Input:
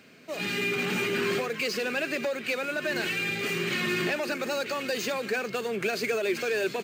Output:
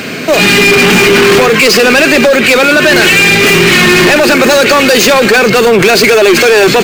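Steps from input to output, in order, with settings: saturation -31.5 dBFS, distortion -9 dB; on a send at -20 dB: reverberation RT60 0.90 s, pre-delay 3 ms; on the sum: loudness maximiser +36 dB; trim -1 dB

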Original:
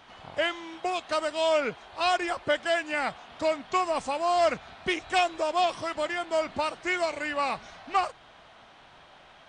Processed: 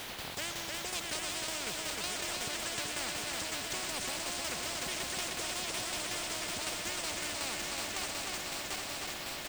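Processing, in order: backward echo that repeats 381 ms, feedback 73%, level -8 dB; peaking EQ 1.2 kHz -13.5 dB 0.96 oct; in parallel at -2 dB: compressor with a negative ratio -32 dBFS; on the sum: bit crusher 9-bit; tremolo saw down 5.4 Hz, depth 60%; delay 307 ms -6.5 dB; on a send at -15 dB: reverberation RT60 3.1 s, pre-delay 92 ms; on the sum: spectrum-flattening compressor 4:1; trim -8 dB

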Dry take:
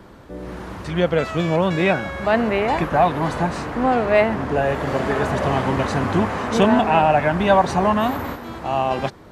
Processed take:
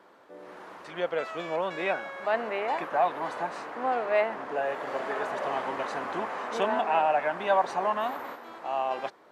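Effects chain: high-pass 520 Hz 12 dB/octave; treble shelf 3 kHz -8 dB; trim -6.5 dB

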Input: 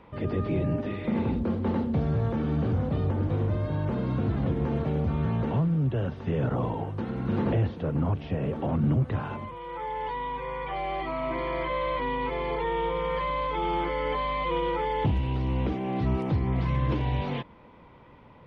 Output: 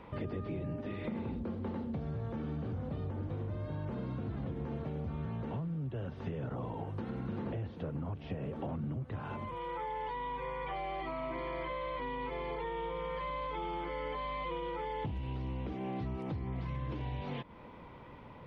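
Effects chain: compression 6:1, threshold -37 dBFS, peak gain reduction 16 dB; trim +1 dB

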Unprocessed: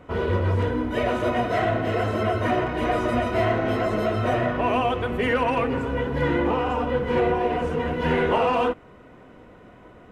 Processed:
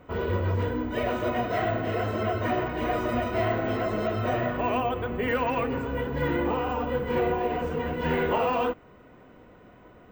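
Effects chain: 4.80–5.28 s: treble shelf 3.8 kHz -9.5 dB; careless resampling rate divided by 2×, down filtered, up hold; trim -4 dB

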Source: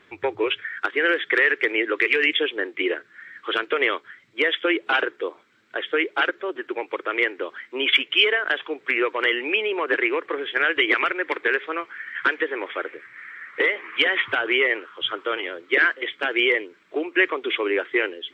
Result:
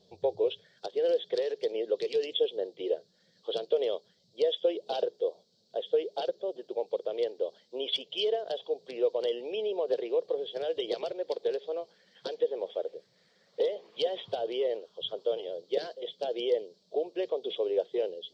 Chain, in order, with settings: FFT filter 130 Hz 0 dB, 180 Hz +9 dB, 300 Hz -13 dB, 480 Hz +6 dB, 680 Hz +5 dB, 1.3 kHz -27 dB, 2.2 kHz -29 dB, 4.5 kHz +15 dB, 8.7 kHz -3 dB; trim -5.5 dB

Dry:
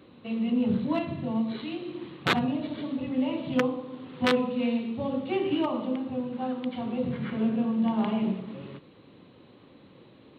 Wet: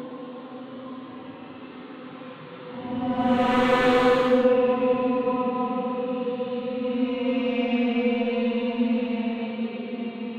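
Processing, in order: overdrive pedal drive 16 dB, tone 1.4 kHz, clips at -9.5 dBFS; Paulstretch 11×, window 0.10 s, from 3.94 s

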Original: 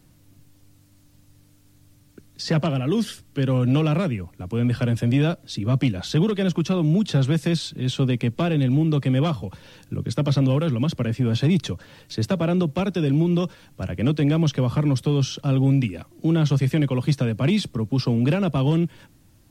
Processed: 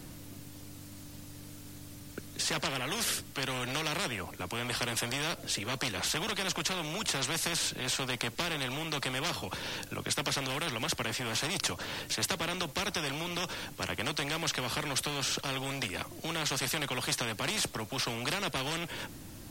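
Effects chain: spectrum-flattening compressor 4:1; trim -5 dB

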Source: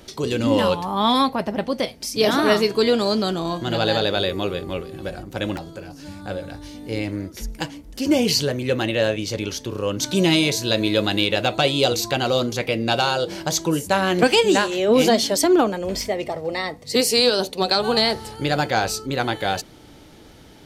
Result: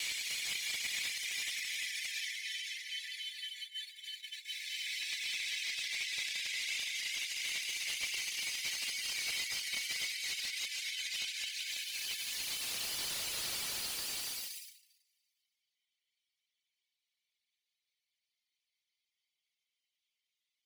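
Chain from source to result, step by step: self-modulated delay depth 0.41 ms; Paulstretch 44×, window 0.10 s, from 19.29 s; reverb removal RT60 1.2 s; gate -39 dBFS, range -32 dB; treble shelf 3.8 kHz -5 dB; peak limiter -25.5 dBFS, peak gain reduction 11.5 dB; steep high-pass 2 kHz 72 dB/octave; slew-rate limiter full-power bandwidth 57 Hz; trim +5 dB

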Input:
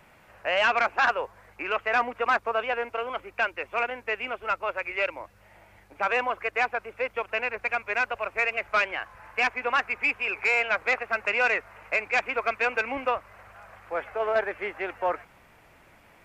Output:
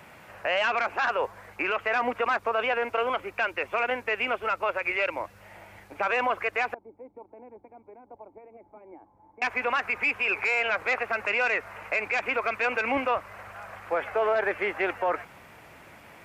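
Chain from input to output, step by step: high-pass 76 Hz 12 dB/octave; peak limiter -24 dBFS, peak gain reduction 11 dB; 6.74–9.42 s: cascade formant filter u; trim +6.5 dB

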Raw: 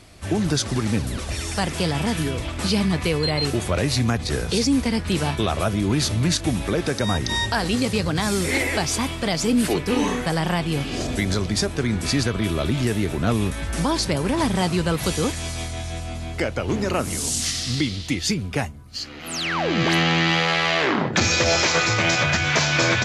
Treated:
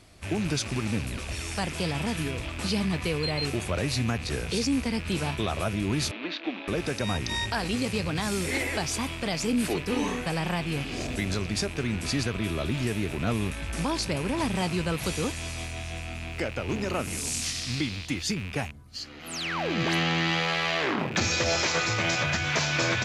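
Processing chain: rattle on loud lows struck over -35 dBFS, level -21 dBFS; 6.11–6.68 s: elliptic band-pass 280–3700 Hz, stop band 40 dB; trim -6.5 dB

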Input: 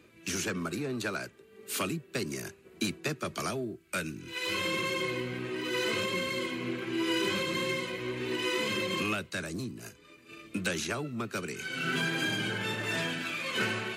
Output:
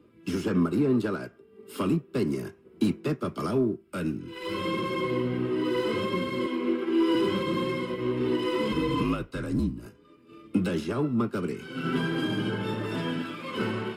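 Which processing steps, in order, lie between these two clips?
6.46–7.15 s: high-pass 250 Hz 24 dB/octave; 8.72–9.86 s: frequency shift -51 Hz; in parallel at -2 dB: peak limiter -27 dBFS, peak gain reduction 9 dB; on the sum: saturation -21 dBFS, distortion -20 dB; reverberation RT60 0.45 s, pre-delay 3 ms, DRR 7 dB; upward expansion 1.5:1, over -40 dBFS

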